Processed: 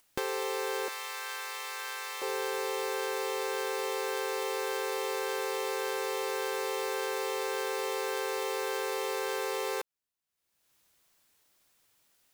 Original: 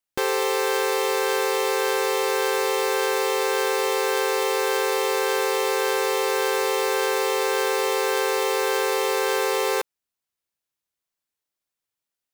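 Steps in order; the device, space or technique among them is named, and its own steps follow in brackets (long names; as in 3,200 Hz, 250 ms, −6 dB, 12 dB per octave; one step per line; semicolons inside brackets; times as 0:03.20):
upward and downward compression (upward compression, threshold −47 dBFS; downward compressor, threshold −26 dBFS, peak gain reduction 6.5 dB)
0:00.88–0:02.22: Chebyshev high-pass filter 1,300 Hz, order 2
level −4 dB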